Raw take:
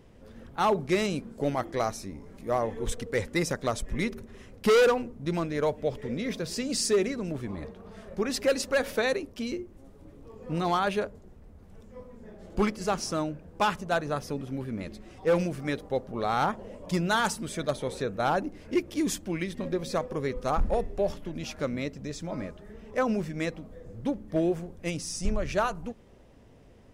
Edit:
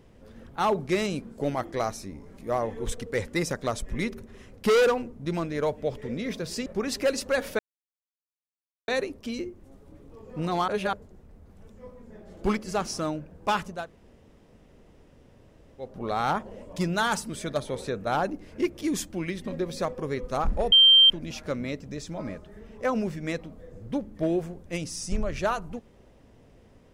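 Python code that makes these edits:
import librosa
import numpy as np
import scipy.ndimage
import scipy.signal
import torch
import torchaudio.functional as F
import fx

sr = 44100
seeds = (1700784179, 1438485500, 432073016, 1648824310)

y = fx.edit(x, sr, fx.cut(start_s=6.66, length_s=1.42),
    fx.insert_silence(at_s=9.01, length_s=1.29),
    fx.reverse_span(start_s=10.81, length_s=0.25),
    fx.room_tone_fill(start_s=13.91, length_s=2.09, crossfade_s=0.24),
    fx.bleep(start_s=20.85, length_s=0.38, hz=3150.0, db=-12.0), tone=tone)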